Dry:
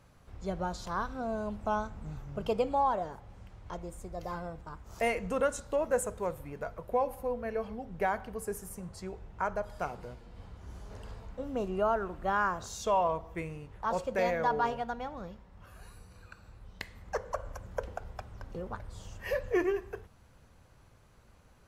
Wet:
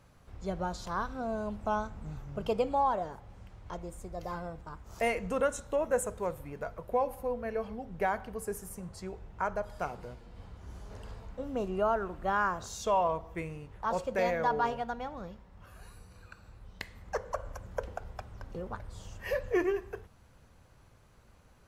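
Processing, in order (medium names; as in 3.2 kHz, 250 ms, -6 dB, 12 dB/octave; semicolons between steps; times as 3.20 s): 5.41–6.06 s: band-stop 4.7 kHz, Q 5.2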